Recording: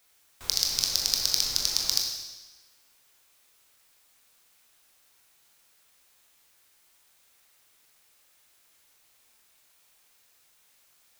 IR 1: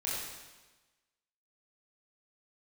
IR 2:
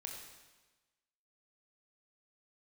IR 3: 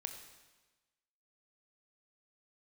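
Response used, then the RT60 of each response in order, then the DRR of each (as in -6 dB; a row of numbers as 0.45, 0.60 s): 2; 1.2, 1.2, 1.2 s; -7.5, 0.0, 5.5 dB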